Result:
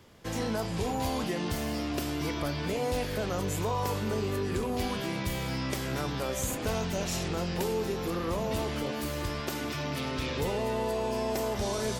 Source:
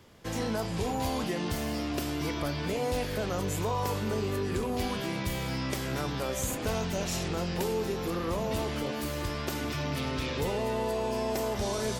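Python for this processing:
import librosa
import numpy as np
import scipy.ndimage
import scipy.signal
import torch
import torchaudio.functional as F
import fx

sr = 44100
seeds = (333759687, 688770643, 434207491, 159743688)

y = fx.highpass(x, sr, hz=120.0, slope=6, at=(9.4, 10.19))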